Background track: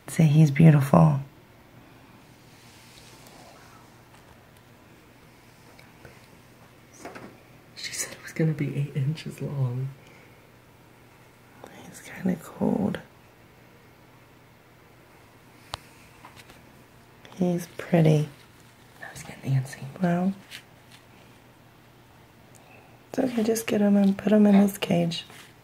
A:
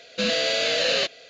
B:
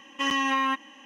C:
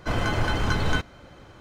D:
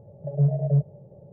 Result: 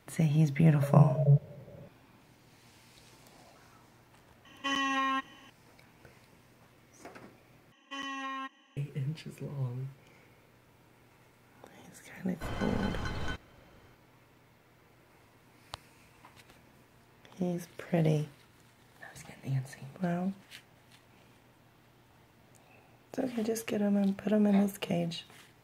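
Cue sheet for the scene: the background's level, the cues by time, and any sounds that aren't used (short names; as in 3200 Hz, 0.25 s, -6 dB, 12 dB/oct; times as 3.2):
background track -8.5 dB
0.56 add D -2 dB
4.45 add B -5.5 dB
7.72 replace with B -13.5 dB
12.35 add C -12.5 dB
not used: A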